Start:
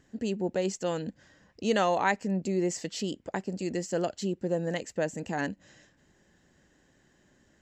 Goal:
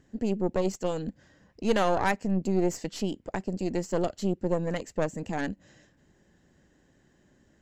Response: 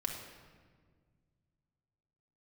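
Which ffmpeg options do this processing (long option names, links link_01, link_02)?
-af "aeval=exprs='0.237*(cos(1*acos(clip(val(0)/0.237,-1,1)))-cos(1*PI/2))+0.0299*(cos(6*acos(clip(val(0)/0.237,-1,1)))-cos(6*PI/2))':channel_layout=same,tiltshelf=frequency=700:gain=3"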